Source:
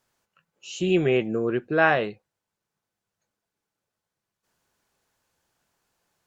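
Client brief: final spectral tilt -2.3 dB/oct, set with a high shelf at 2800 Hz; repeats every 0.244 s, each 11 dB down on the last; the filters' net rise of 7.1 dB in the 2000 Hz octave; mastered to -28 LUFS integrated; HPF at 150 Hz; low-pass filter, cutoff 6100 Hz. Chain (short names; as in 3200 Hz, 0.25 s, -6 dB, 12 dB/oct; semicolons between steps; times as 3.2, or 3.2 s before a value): HPF 150 Hz; LPF 6100 Hz; bell 2000 Hz +7 dB; high shelf 2800 Hz +7.5 dB; feedback echo 0.244 s, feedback 28%, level -11 dB; gain -8 dB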